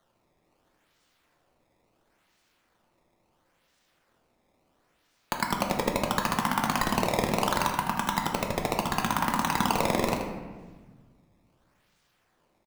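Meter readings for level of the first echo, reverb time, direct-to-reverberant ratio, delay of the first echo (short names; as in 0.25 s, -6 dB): -9.5 dB, 1.4 s, 1.0 dB, 79 ms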